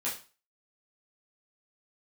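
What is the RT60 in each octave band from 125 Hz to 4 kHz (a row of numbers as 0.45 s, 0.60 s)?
0.35 s, 0.35 s, 0.30 s, 0.35 s, 0.35 s, 0.35 s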